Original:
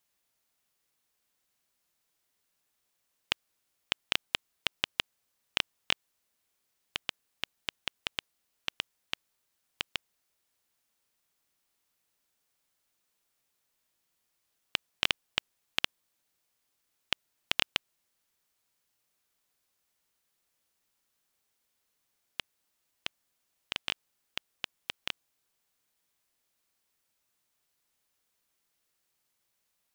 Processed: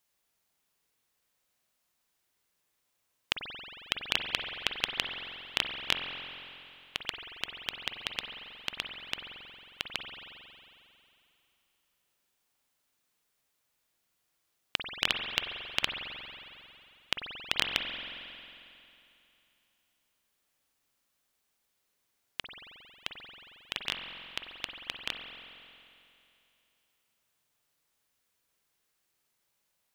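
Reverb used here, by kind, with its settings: spring tank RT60 2.8 s, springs 45 ms, chirp 25 ms, DRR 3 dB

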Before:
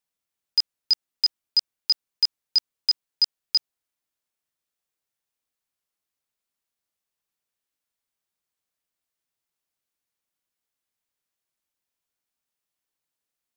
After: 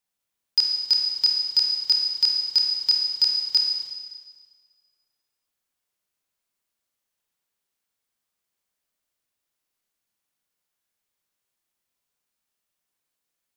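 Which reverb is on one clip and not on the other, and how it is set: Schroeder reverb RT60 1.6 s, combs from 31 ms, DRR 0.5 dB; gain +1 dB

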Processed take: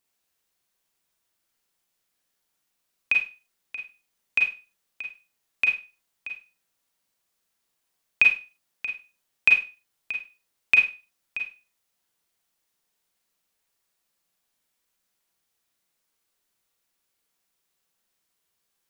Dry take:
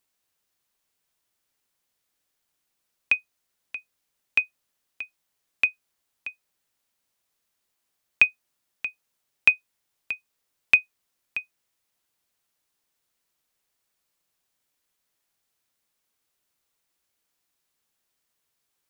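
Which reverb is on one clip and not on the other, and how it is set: Schroeder reverb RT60 0.31 s, combs from 33 ms, DRR 0.5 dB; gain -2 dB

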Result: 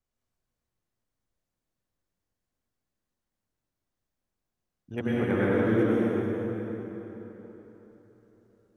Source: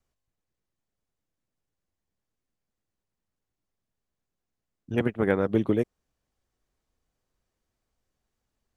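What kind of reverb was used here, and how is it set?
plate-style reverb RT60 4 s, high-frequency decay 0.7×, pre-delay 90 ms, DRR -8.5 dB; gain -8 dB

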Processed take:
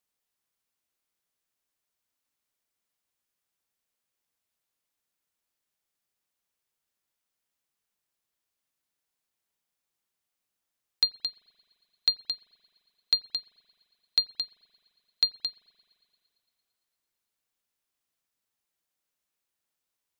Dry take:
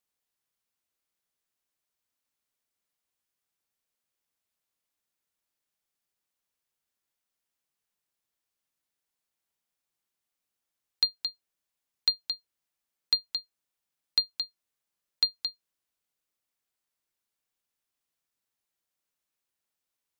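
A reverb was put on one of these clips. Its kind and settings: spring tank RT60 2.7 s, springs 43 ms, chirp 75 ms, DRR 16.5 dB; gain +1 dB

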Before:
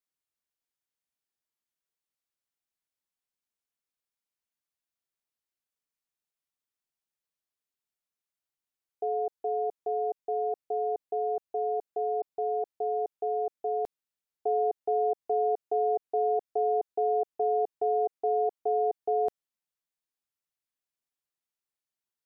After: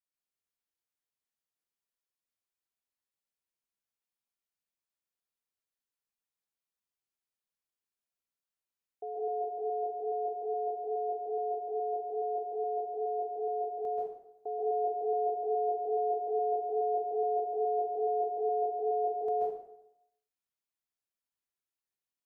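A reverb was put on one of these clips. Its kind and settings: plate-style reverb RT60 0.81 s, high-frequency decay 0.8×, pre-delay 0.12 s, DRR -5 dB; gain -9.5 dB

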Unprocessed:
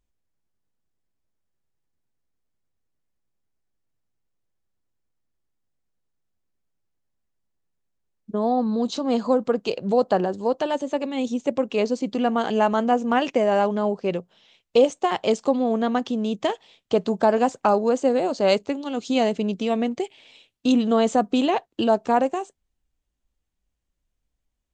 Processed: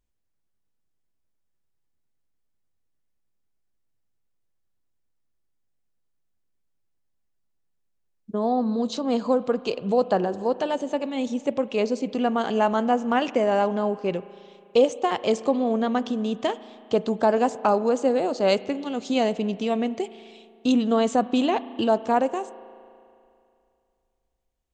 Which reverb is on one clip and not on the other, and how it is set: spring tank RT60 2.5 s, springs 36 ms, chirp 80 ms, DRR 16 dB; gain -1.5 dB

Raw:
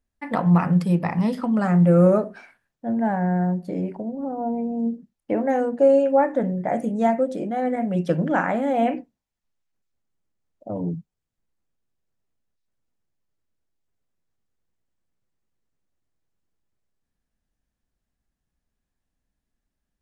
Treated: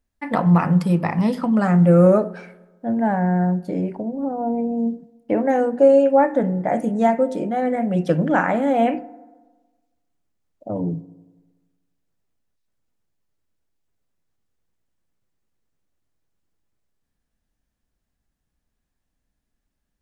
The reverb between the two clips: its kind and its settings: FDN reverb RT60 1.3 s, low-frequency decay 1×, high-frequency decay 0.4×, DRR 18 dB; gain +3 dB

